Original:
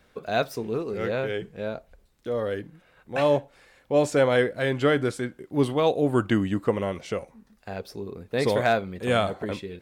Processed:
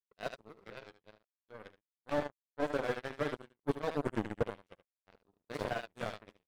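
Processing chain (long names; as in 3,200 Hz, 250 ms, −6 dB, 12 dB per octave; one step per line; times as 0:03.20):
time stretch by overlap-add 0.66×, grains 104 ms
power curve on the samples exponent 3
on a send: single-tap delay 75 ms −13.5 dB
on the sum: slew-rate limiting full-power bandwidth 23 Hz
level +3 dB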